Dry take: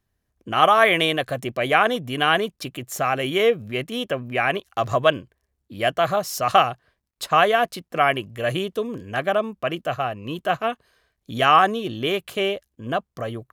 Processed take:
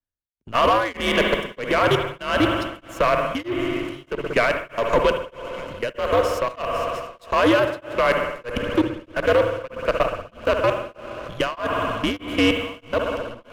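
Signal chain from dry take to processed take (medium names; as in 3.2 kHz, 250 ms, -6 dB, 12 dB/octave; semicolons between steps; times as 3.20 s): on a send: multi-head delay 229 ms, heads second and third, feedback 68%, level -20.5 dB; on the sum: level held to a coarse grid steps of 23 dB; treble shelf 11 kHz -10.5 dB; spring tank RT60 2 s, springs 60 ms, chirp 30 ms, DRR 7 dB; peak limiter -15.5 dBFS, peak gain reduction 6 dB; frequency shift -110 Hz; waveshaping leveller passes 2; tremolo of two beating tones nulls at 1.6 Hz; trim +4 dB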